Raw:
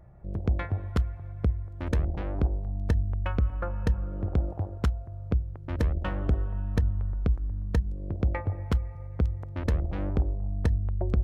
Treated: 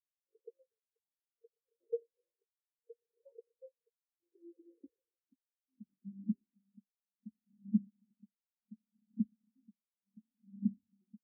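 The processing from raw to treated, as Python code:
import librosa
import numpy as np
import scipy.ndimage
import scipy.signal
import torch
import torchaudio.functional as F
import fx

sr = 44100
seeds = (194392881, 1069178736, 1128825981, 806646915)

y = fx.filter_sweep_highpass(x, sr, from_hz=450.0, to_hz=220.0, start_s=3.75, end_s=5.7, q=6.2)
y = fx.rider(y, sr, range_db=4, speed_s=0.5)
y = fx.lowpass(y, sr, hz=1300.0, slope=6)
y = fx.low_shelf(y, sr, hz=180.0, db=8.0)
y = fx.doubler(y, sr, ms=15.0, db=-14.0)
y = fx.echo_swell(y, sr, ms=151, loudest=5, wet_db=-14.5)
y = fx.tremolo_shape(y, sr, shape='triangle', hz=0.68, depth_pct=95)
y = 10.0 ** (-14.5 / 20.0) * np.tanh(y / 10.0 ** (-14.5 / 20.0))
y = fx.spectral_expand(y, sr, expansion=4.0)
y = F.gain(torch.from_numpy(y), -4.0).numpy()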